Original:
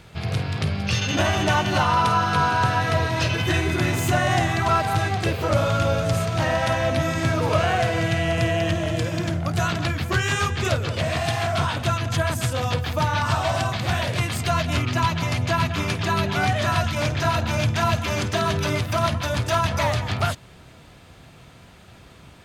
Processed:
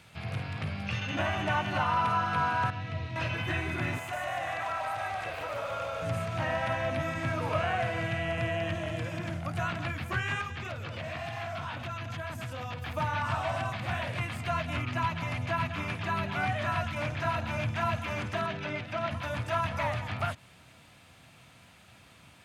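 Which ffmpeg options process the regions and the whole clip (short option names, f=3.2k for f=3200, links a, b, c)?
-filter_complex "[0:a]asettb=1/sr,asplit=3[a][b][c];[a]atrim=end=2.704[d];[b]atrim=start=2.7:end=3.16,asetpts=PTS-STARTPTS,afade=t=in:d=0.004:c=qsin,afade=t=out:st=0.456:d=0.004:c=qsin,lowpass=2.9k,equalizer=f=970:t=o:w=2.7:g=-12.5,bandreject=f=1.6k:w=13[e];[c]atrim=start=3.156[f];[d][e]acrossfade=d=0.004:c1=hsin:c2=qsin[g];[g][f]acrossfade=d=0.004:c1=qsin:c2=hsin,asettb=1/sr,asplit=3[h][i][j];[h]atrim=end=3.984[k];[i]atrim=start=3.98:end=6.02,asetpts=PTS-STARTPTS,afade=t=in:d=0.004:c=qsin,afade=t=out:st=2.036:d=0.004:c=qsin,lowshelf=f=420:t=q:w=1.5:g=-10,acompressor=threshold=-25dB:ratio=3:attack=3.2:release=140:knee=1:detection=peak,asplit=7[l][m][n][o][p][q][r];[m]adelay=148,afreqshift=-40,volume=-4.5dB[s];[n]adelay=296,afreqshift=-80,volume=-10.7dB[t];[o]adelay=444,afreqshift=-120,volume=-16.9dB[u];[p]adelay=592,afreqshift=-160,volume=-23.1dB[v];[q]adelay=740,afreqshift=-200,volume=-29.3dB[w];[r]adelay=888,afreqshift=-240,volume=-35.5dB[x];[l][s][t][u][v][w][x]amix=inputs=7:normalize=0,atrim=end_sample=89964[y];[j]atrim=start=6.016[z];[k][y]acrossfade=d=0.004:c1=hsin:c2=qsin[aa];[aa][z]acrossfade=d=0.004:c1=qsin:c2=hsin,asettb=1/sr,asplit=3[ab][ac][ad];[ab]atrim=end=10.414[ae];[ac]atrim=start=10.41:end=12.82,asetpts=PTS-STARTPTS,afade=t=in:d=0.004:c=qsin,afade=t=out:st=2.406:d=0.004:c=qsin,equalizer=f=9.2k:w=1.7:g=-8.5,acompressor=threshold=-24dB:ratio=5:attack=3.2:release=140:knee=1:detection=peak[af];[ad]atrim=start=12.816[ag];[ae][af]acrossfade=d=0.004:c1=hsin:c2=qsin[ah];[ah][ag]acrossfade=d=0.004:c1=qsin:c2=hsin,asettb=1/sr,asplit=3[ai][aj][ak];[ai]atrim=end=18.464[al];[aj]atrim=start=18.46:end=19.11,asetpts=PTS-STARTPTS,afade=t=in:d=0.004:c=qsin,afade=t=out:st=0.646:d=0.004:c=qsin,highpass=150,lowpass=4.4k,equalizer=f=1.1k:w=4.3:g=-9[am];[ak]atrim=start=19.106[an];[al][am]acrossfade=d=0.004:c1=hsin:c2=qsin[ao];[ao][an]acrossfade=d=0.004:c1=qsin:c2=hsin,highpass=94,acrossover=split=2600[ap][aq];[aq]acompressor=threshold=-46dB:ratio=4:attack=1:release=60[ar];[ap][ar]amix=inputs=2:normalize=0,equalizer=f=160:t=o:w=0.67:g=-3,equalizer=f=400:t=o:w=0.67:g=-8,equalizer=f=2.5k:t=o:w=0.67:g=4,equalizer=f=10k:t=o:w=0.67:g=5,volume=-7dB"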